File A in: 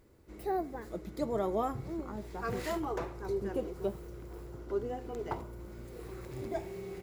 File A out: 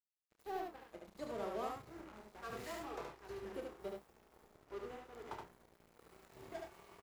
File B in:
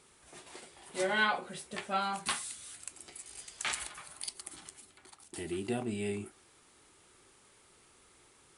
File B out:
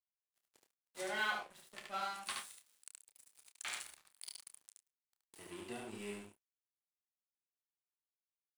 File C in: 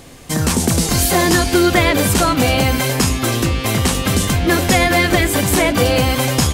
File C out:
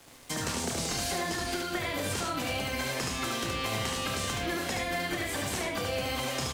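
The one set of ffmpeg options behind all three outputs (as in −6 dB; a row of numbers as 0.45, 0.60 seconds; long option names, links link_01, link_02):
-filter_complex "[0:a]acrossover=split=110|350|7700[link_01][link_02][link_03][link_04];[link_01]acompressor=threshold=-27dB:ratio=4[link_05];[link_02]acompressor=threshold=-24dB:ratio=4[link_06];[link_03]acompressor=threshold=-21dB:ratio=4[link_07];[link_04]acompressor=threshold=-40dB:ratio=4[link_08];[link_05][link_06][link_07][link_08]amix=inputs=4:normalize=0,acrossover=split=140|950|2600[link_09][link_10][link_11][link_12];[link_09]acrusher=bits=4:mode=log:mix=0:aa=0.000001[link_13];[link_13][link_10][link_11][link_12]amix=inputs=4:normalize=0,aeval=exprs='sgn(val(0))*max(abs(val(0))-0.0075,0)':channel_layout=same,lowshelf=frequency=380:gain=-8,asplit=2[link_14][link_15];[link_15]adelay=29,volume=-9dB[link_16];[link_14][link_16]amix=inputs=2:normalize=0,acompressor=threshold=-23dB:ratio=6,aecho=1:1:73:0.708,volume=-7dB"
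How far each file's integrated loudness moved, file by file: −10.0, −7.0, −16.5 LU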